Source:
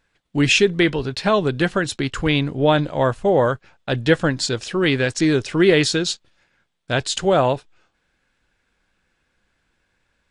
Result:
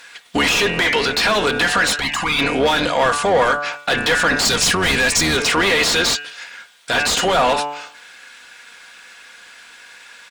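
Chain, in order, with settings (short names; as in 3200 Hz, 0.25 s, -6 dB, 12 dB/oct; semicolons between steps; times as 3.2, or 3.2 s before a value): octaver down 2 oct, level +3 dB; pre-emphasis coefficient 0.97; de-hum 145.6 Hz, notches 20; overdrive pedal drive 36 dB, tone 1300 Hz, clips at -9 dBFS; 4.45–5.37 tone controls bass +9 dB, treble +7 dB; compressor, threshold -27 dBFS, peak gain reduction 9.5 dB; limiter -24.5 dBFS, peak gain reduction 7 dB; added harmonics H 5 -7 dB, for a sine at -11.5 dBFS; 1.96–2.39 envelope flanger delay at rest 3.3 ms, full sweep at -14 dBFS; comb 4.2 ms, depth 33%; gain +5 dB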